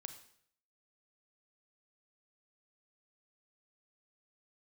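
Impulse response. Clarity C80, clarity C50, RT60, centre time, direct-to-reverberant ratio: 12.5 dB, 10.0 dB, 0.65 s, 12 ms, 7.5 dB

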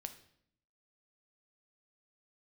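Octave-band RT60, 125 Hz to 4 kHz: 0.90, 0.95, 0.70, 0.65, 0.60, 0.60 s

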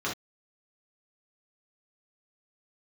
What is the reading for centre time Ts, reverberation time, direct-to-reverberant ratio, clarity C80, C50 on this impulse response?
27 ms, not exponential, -5.5 dB, 22.5 dB, 5.5 dB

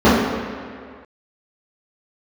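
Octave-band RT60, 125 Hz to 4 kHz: 1.7, 1.9, 2.0, 2.1, 2.1, 1.6 s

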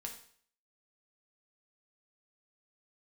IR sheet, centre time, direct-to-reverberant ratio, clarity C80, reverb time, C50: 18 ms, 1.0 dB, 12.0 dB, 0.55 s, 8.0 dB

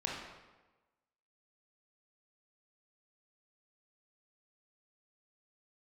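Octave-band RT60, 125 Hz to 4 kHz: 1.1, 1.2, 1.2, 1.2, 1.0, 0.85 s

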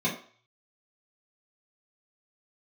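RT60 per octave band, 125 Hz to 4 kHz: 0.60, 0.35, 0.45, 0.50, 0.50, 0.45 s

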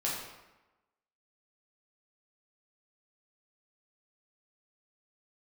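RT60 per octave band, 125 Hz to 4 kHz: 0.95, 1.0, 1.0, 1.1, 0.95, 0.75 s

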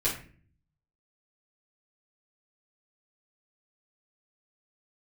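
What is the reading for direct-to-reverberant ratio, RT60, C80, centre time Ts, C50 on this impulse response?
-9.5 dB, 0.40 s, 11.5 dB, 27 ms, 7.0 dB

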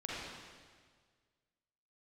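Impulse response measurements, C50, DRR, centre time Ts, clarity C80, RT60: -4.0 dB, -6.5 dB, 0.126 s, -1.5 dB, 1.7 s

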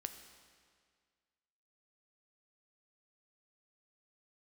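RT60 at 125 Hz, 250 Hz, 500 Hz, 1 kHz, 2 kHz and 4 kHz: 1.9, 1.9, 1.9, 1.9, 1.8, 1.7 s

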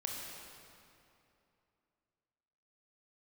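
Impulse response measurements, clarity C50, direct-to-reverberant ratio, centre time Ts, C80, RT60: 0.0 dB, -1.5 dB, 0.122 s, 1.5 dB, 2.8 s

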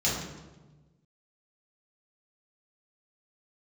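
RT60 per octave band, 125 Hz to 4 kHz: 1.7, 1.5, 1.3, 1.1, 0.90, 0.80 s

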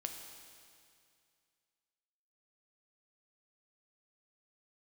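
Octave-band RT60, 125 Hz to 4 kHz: 2.6, 2.3, 2.3, 2.3, 2.3, 2.3 s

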